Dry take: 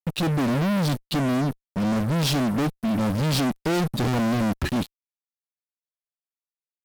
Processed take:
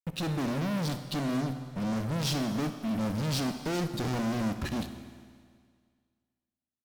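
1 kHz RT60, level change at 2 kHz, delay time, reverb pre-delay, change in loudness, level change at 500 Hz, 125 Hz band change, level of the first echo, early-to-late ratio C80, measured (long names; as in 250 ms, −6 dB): 1.9 s, −8.0 dB, 63 ms, 15 ms, −7.5 dB, −7.5 dB, −7.5 dB, −16.0 dB, 11.0 dB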